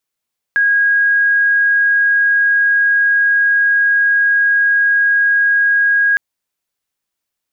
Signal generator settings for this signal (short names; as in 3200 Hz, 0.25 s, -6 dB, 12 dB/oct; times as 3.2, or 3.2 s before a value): tone sine 1640 Hz -9.5 dBFS 5.61 s